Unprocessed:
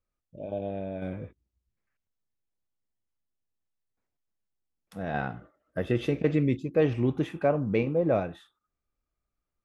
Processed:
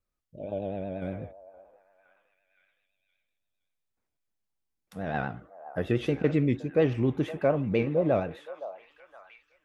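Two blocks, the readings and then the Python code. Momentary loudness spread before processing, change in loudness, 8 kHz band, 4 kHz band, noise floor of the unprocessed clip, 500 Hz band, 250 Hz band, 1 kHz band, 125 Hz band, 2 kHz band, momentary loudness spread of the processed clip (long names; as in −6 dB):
14 LU, 0.0 dB, can't be measured, +0.5 dB, below −85 dBFS, 0.0 dB, 0.0 dB, 0.0 dB, 0.0 dB, 0.0 dB, 15 LU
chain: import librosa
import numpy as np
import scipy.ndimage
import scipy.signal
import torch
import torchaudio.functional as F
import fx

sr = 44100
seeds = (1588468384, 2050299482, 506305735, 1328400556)

y = fx.vibrato(x, sr, rate_hz=8.4, depth_cents=73.0)
y = fx.echo_stepped(y, sr, ms=517, hz=780.0, octaves=0.7, feedback_pct=70, wet_db=-10.5)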